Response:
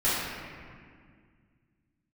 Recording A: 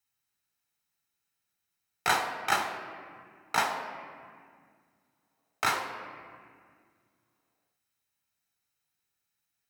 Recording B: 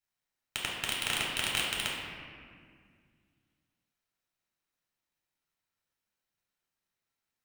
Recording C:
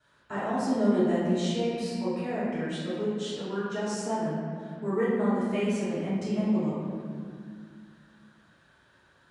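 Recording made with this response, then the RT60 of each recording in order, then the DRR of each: C; 2.0, 2.0, 2.0 seconds; 5.0, −4.0, −13.5 decibels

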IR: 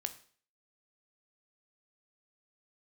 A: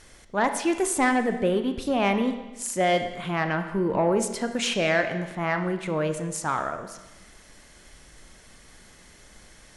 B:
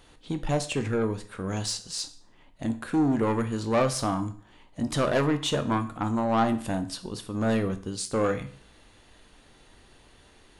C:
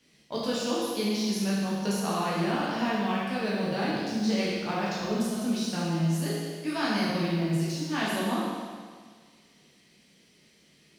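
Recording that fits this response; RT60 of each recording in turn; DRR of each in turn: B; 1.1, 0.45, 1.7 seconds; 7.5, 8.5, −8.0 decibels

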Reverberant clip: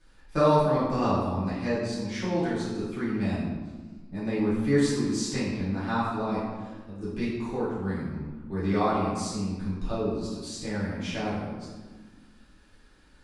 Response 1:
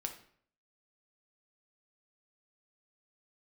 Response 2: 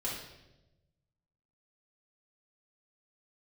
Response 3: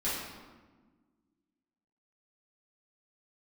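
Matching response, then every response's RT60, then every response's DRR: 3; 0.60, 1.0, 1.4 seconds; 4.0, −7.0, −11.0 decibels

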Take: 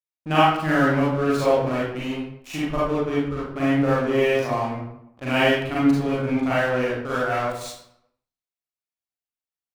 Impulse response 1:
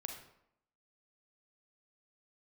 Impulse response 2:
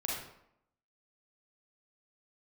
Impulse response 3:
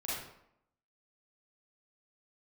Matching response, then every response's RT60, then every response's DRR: 3; 0.75, 0.75, 0.75 seconds; 3.0, −4.5, −9.0 decibels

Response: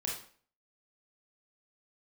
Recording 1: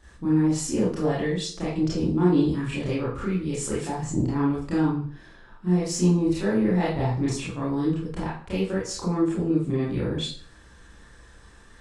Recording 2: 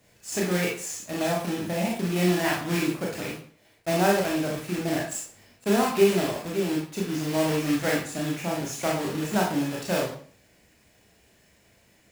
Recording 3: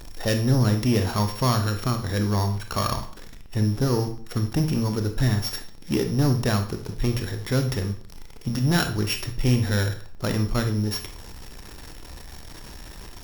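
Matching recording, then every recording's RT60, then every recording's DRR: 2; 0.50, 0.50, 0.50 seconds; −9.0, −2.5, 6.0 decibels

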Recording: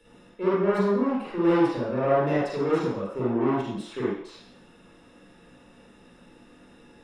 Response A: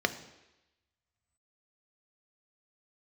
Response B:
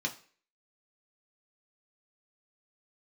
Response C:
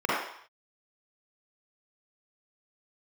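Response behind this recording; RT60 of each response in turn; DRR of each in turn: C; 1.0 s, non-exponential decay, non-exponential decay; 8.5, 0.5, −8.5 decibels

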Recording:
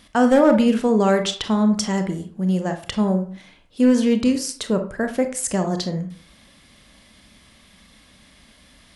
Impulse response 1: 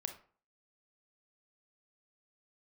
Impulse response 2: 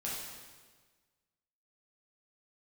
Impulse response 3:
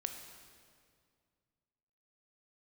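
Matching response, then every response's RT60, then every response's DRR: 1; 0.45, 1.5, 2.1 seconds; 6.0, −6.5, 5.0 decibels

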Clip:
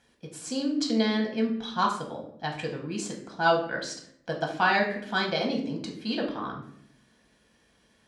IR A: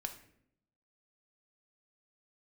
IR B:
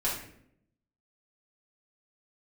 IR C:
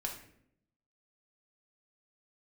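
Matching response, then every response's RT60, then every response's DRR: C; 0.70, 0.70, 0.70 seconds; 5.0, −7.5, 0.0 decibels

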